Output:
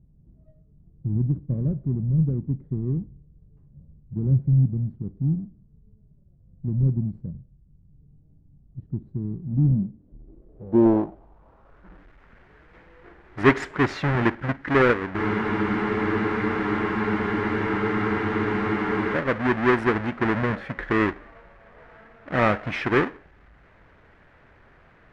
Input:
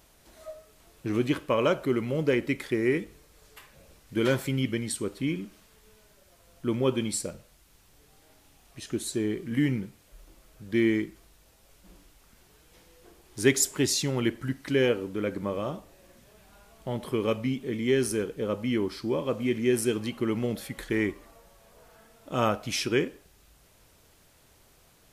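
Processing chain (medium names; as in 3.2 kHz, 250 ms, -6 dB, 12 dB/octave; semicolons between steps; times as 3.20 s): square wave that keeps the level; low-pass sweep 150 Hz -> 1.8 kHz, 9.50–12.05 s; spectral freeze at 15.19 s, 3.95 s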